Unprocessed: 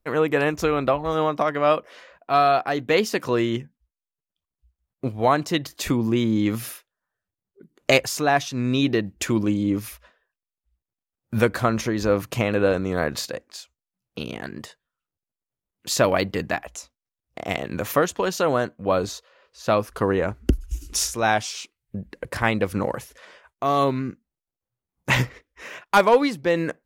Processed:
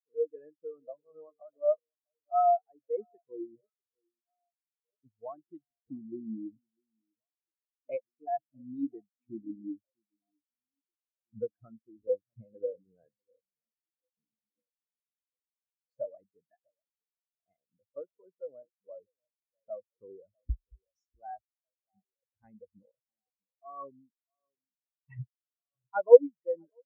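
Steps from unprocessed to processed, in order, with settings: echo whose repeats swap between lows and highs 648 ms, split 1.3 kHz, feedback 77%, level -11 dB; spectral contrast expander 4:1

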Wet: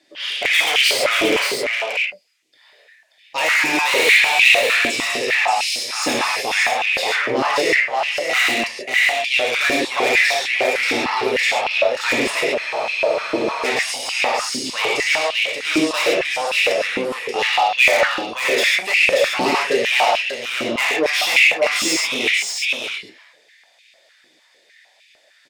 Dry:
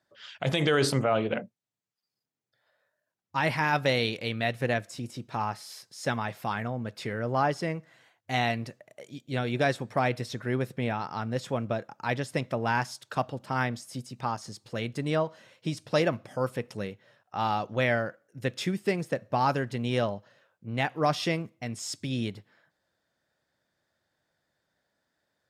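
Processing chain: low-pass 10 kHz 12 dB/octave; resonant high shelf 1.8 kHz +8 dB, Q 3; in parallel at +1 dB: compression, threshold -37 dBFS, peak gain reduction 21 dB; on the sum: gated-style reverb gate 160 ms flat, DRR -3 dB; saturation -21 dBFS, distortion -7 dB; on a send: delay 581 ms -4 dB; on the sum: spectral freeze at 12.61 s, 1.04 s; step-sequenced high-pass 6.6 Hz 310–2500 Hz; trim +3.5 dB

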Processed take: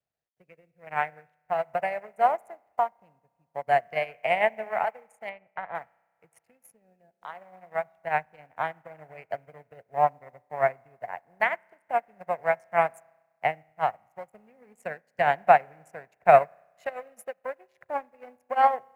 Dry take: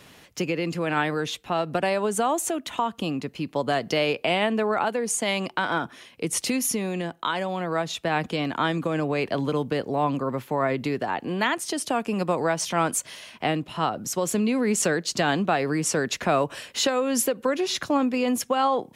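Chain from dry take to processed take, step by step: local Wiener filter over 41 samples; FFT filter 140 Hz 0 dB, 300 Hz -14 dB, 710 Hz +13 dB, 1.2 kHz +2 dB, 2.1 kHz +13 dB, 3.5 kHz -10 dB, 5.9 kHz -8 dB, 14 kHz +7 dB; reverberation RT60 3.0 s, pre-delay 32 ms, DRR 10.5 dB; bit crusher 9-bit; 5.29–5.75 s: distance through air 310 m; upward expansion 2.5:1, over -36 dBFS

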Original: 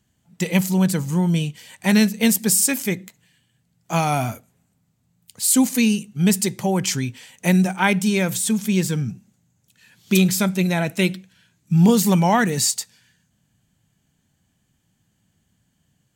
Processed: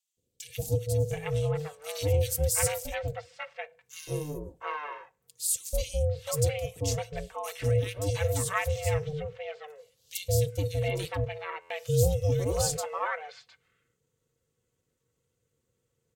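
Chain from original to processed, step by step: comb 4.9 ms; ring modulator 300 Hz; three bands offset in time highs, lows, mids 170/710 ms, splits 600/2900 Hz; buffer glitch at 11.61 s, samples 512, times 7; trim -8.5 dB

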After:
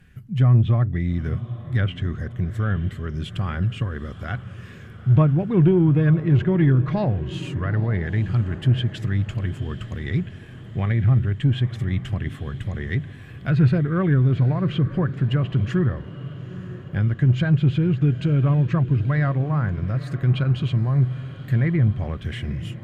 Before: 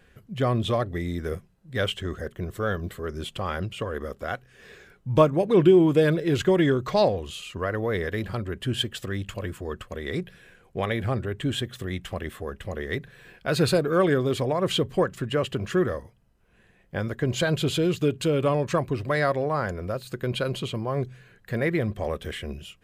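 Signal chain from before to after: low-pass that closes with the level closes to 2 kHz, closed at -22 dBFS; ten-band graphic EQ 125 Hz +11 dB, 500 Hz -12 dB, 1 kHz -5 dB, 4 kHz -5 dB, 8 kHz -4 dB; in parallel at -5.5 dB: saturation -19 dBFS, distortion -12 dB; on the sum: echo that smears into a reverb 895 ms, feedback 54%, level -14.5 dB

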